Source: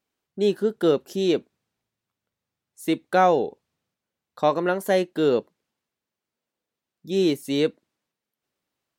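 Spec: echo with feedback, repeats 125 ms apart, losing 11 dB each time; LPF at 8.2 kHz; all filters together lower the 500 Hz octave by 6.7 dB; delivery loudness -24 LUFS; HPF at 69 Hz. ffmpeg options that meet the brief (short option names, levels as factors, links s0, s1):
-af "highpass=69,lowpass=8200,equalizer=f=500:t=o:g=-8.5,aecho=1:1:125|250|375:0.282|0.0789|0.0221,volume=1.5"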